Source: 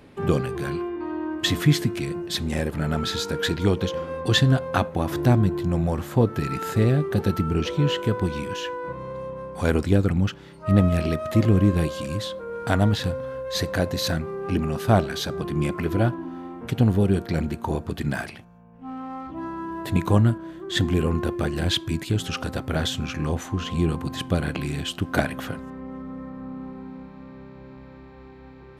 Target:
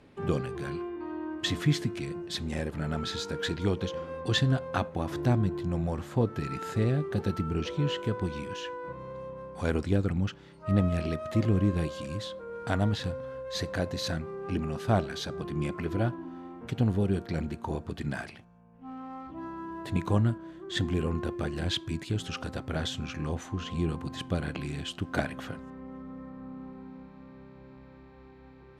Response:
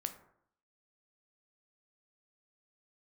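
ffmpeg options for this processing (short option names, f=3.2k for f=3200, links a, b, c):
-af "lowpass=9k,volume=-7dB"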